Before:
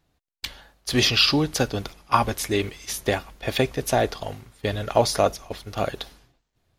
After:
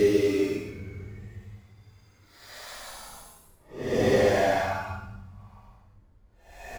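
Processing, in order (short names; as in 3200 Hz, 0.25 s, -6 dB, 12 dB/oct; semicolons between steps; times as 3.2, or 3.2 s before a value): median filter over 15 samples; reverb removal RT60 0.98 s; notches 50/100/150/200 Hz; doubler 22 ms -13.5 dB; Paulstretch 7.6×, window 0.10 s, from 2.55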